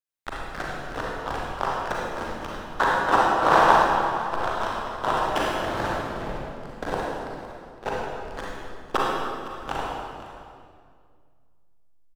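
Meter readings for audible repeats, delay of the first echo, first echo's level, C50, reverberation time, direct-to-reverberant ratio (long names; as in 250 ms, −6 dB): 1, 510 ms, −16.0 dB, −3.0 dB, 2.1 s, −5.0 dB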